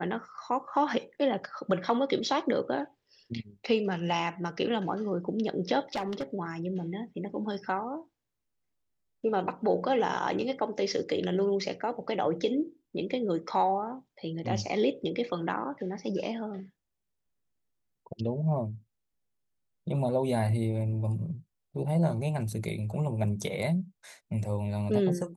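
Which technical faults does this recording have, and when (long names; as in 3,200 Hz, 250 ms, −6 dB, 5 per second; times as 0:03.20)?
0:05.95–0:06.23: clipping −27 dBFS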